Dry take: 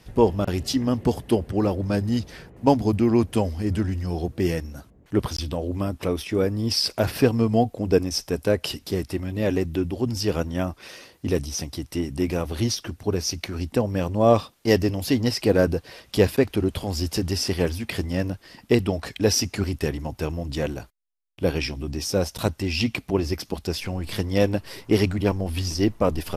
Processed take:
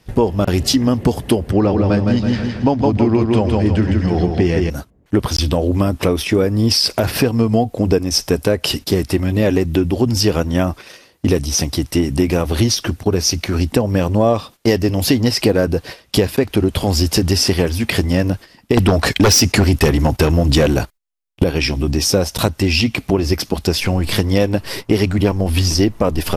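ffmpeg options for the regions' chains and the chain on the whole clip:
-filter_complex "[0:a]asettb=1/sr,asplit=3[s0][s1][s2];[s0]atrim=end=1.534[s3];[s1]atrim=start=1.53:end=4.7,asetpts=PTS-STARTPTS,afade=t=in:d=0.004:c=qsin,afade=t=out:st=3.166:d=0.004:c=qsin,lowpass=4700,aecho=1:1:162|324|486|648|810:0.562|0.242|0.104|0.0447|0.0192,atrim=end_sample=139797[s4];[s2]atrim=start=4.696[s5];[s3][s4]acrossfade=d=0.004:c1=hsin:c2=qsin[s6];[s6][s5]acrossfade=d=0.004:c1=qsin:c2=hsin,asettb=1/sr,asplit=3[s7][s8][s9];[s7]atrim=end=18.774[s10];[s8]atrim=start=18.77:end=21.44,asetpts=PTS-STARTPTS,afade=t=in:d=0.004:c=qsin,afade=t=out:st=2.666:d=0.004:c=qsin,agate=range=0.251:threshold=0.00794:ratio=16:release=100:detection=peak,aeval=exprs='0.473*sin(PI/2*3.16*val(0)/0.473)':c=same[s11];[s9]atrim=start=21.436[s12];[s10][s11]acrossfade=d=0.004:c1=hsin:c2=qsin[s13];[s13][s12]acrossfade=d=0.004:c1=qsin:c2=hsin,agate=range=0.2:threshold=0.0112:ratio=16:detection=peak,acompressor=threshold=0.0631:ratio=6,alimiter=level_in=5.31:limit=0.891:release=50:level=0:latency=1,volume=0.841"

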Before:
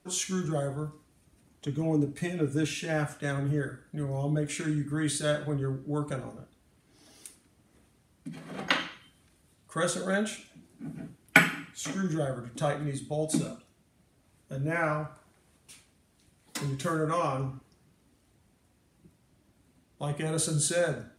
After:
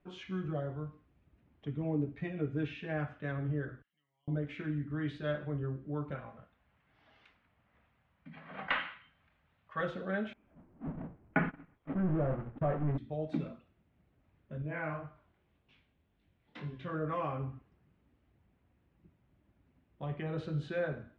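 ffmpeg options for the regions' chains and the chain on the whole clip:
-filter_complex "[0:a]asettb=1/sr,asplit=3[s0][s1][s2];[s0]atrim=end=3.824[s3];[s1]atrim=start=3.82:end=4.28,asetpts=PTS-STARTPTS,afade=t=in:d=0.004:c=qsin,afade=t=out:st=0.456:d=0.004:c=qsin,aecho=1:1:1:0.65,atrim=end_sample=20286,acompressor=threshold=0.00316:ratio=2.5:attack=3.2:release=140:knee=1:detection=peak,bandpass=f=3100:t=q:w=3.5[s4];[s2]atrim=start=4.276[s5];[s3][s4]acrossfade=d=0.004:c1=hsin:c2=qsin[s6];[s6][s5]acrossfade=d=0.004:c1=qsin:c2=hsin,asettb=1/sr,asplit=3[s7][s8][s9];[s7]atrim=end=6.154[s10];[s8]atrim=start=6.15:end=9.81,asetpts=PTS-STARTPTS,afade=t=in:d=0.004:c=qsin,afade=t=out:st=3.656:d=0.004:c=qsin,equalizer=f=350:t=o:w=0.93:g=-12.5,asplit=2[s11][s12];[s12]highpass=f=720:p=1,volume=4.47,asoftclip=type=tanh:threshold=0.299[s13];[s11][s13]amix=inputs=2:normalize=0,lowpass=f=2400:p=1,volume=0.501,asplit=2[s14][s15];[s15]adelay=26,volume=0.2[s16];[s14][s16]amix=inputs=2:normalize=0,atrim=end_sample=161406[s17];[s9]atrim=start=9.806[s18];[s10][s17]acrossfade=d=0.004:c1=hsin:c2=qsin[s19];[s19][s18]acrossfade=d=0.004:c1=qsin:c2=hsin,asettb=1/sr,asplit=3[s20][s21][s22];[s20]atrim=end=10.334[s23];[s21]atrim=start=10.33:end=12.98,asetpts=PTS-STARTPTS,afade=t=in:d=0.004:c=qsin,afade=t=out:st=2.646:d=0.004:c=qsin,aeval=exprs='val(0)+0.5*0.0631*sgn(val(0))':c=same,lowpass=1100,agate=range=0.0447:threshold=0.0355:ratio=16:release=100:detection=peak[s24];[s22]atrim=start=12.976[s25];[s23][s24]acrossfade=d=0.004:c1=hsin:c2=qsin[s26];[s26][s25]acrossfade=d=0.004:c1=qsin:c2=hsin,asettb=1/sr,asplit=3[s27][s28][s29];[s27]atrim=end=14.624[s30];[s28]atrim=start=14.62:end=16.94,asetpts=PTS-STARTPTS,afade=t=in:d=0.004:c=qsin,afade=t=out:st=2.316:d=0.004:c=qsin,equalizer=f=3400:t=o:w=0.64:g=4.5,bandreject=f=1300:w=22,flanger=delay=19:depth=7:speed=1.9[s31];[s29]atrim=start=16.936[s32];[s30][s31]acrossfade=d=0.004:c1=hsin:c2=qsin[s33];[s33][s32]acrossfade=d=0.004:c1=qsin:c2=hsin,lowpass=f=2900:w=0.5412,lowpass=f=2900:w=1.3066,lowshelf=f=62:g=11,volume=0.447"

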